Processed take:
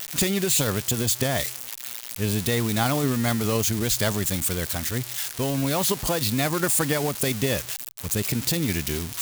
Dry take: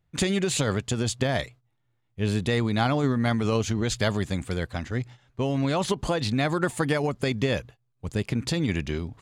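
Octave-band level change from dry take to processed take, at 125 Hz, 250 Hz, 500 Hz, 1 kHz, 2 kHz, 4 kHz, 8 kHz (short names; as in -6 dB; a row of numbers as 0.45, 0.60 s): 0.0, 0.0, 0.0, +0.5, +1.0, +4.5, +10.5 dB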